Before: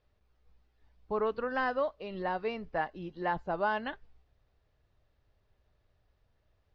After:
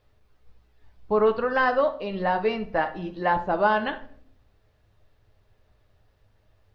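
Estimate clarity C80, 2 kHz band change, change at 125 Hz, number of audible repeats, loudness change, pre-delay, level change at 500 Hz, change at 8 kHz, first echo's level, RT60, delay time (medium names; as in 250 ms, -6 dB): 17.5 dB, +9.0 dB, +8.5 dB, no echo, +9.5 dB, 10 ms, +9.5 dB, no reading, no echo, 0.60 s, no echo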